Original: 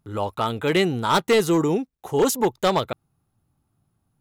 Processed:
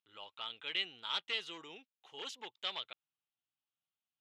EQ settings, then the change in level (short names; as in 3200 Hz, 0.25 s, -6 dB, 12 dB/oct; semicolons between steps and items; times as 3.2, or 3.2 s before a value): band-pass 3100 Hz, Q 3.7; air absorption 61 m; -3.5 dB